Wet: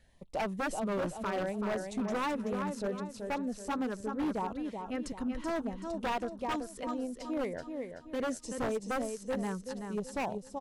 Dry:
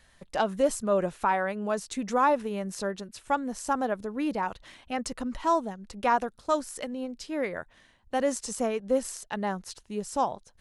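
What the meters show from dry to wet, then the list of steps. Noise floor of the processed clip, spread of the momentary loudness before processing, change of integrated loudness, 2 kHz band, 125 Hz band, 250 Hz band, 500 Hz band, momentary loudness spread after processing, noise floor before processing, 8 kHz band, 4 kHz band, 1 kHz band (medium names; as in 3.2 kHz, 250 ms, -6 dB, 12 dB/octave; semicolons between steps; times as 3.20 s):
-52 dBFS, 10 LU, -6.0 dB, -5.0 dB, -1.0 dB, -2.0 dB, -6.5 dB, 5 LU, -61 dBFS, -9.0 dB, -5.0 dB, -9.0 dB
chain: tilt shelf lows +4.5 dB, about 1.4 kHz; LFO notch sine 0.72 Hz 640–1700 Hz; feedback delay 380 ms, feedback 40%, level -6.5 dB; wavefolder -21 dBFS; trim -6 dB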